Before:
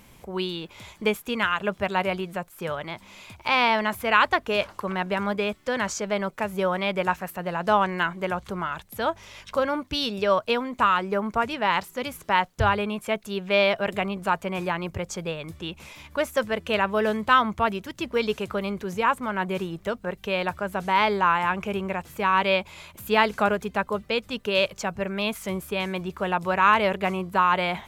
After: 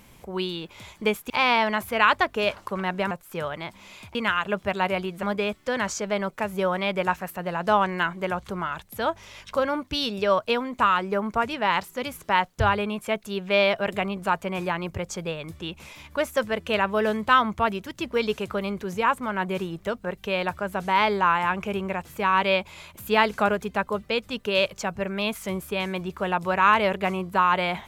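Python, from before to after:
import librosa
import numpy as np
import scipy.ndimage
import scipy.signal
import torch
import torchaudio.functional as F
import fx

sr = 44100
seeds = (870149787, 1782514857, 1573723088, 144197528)

y = fx.edit(x, sr, fx.swap(start_s=1.3, length_s=1.08, other_s=3.42, other_length_s=1.81), tone=tone)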